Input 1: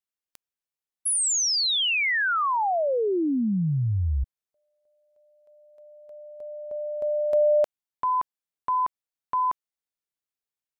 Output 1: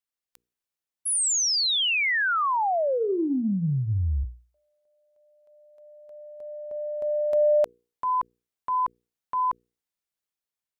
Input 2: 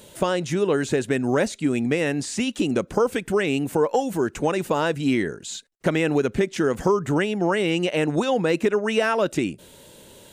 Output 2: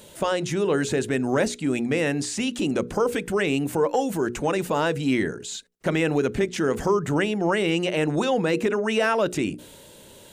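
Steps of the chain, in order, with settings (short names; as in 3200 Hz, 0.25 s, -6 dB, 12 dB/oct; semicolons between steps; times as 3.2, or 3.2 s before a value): notches 60/120/180/240/300/360/420/480 Hz; transient shaper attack -3 dB, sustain +2 dB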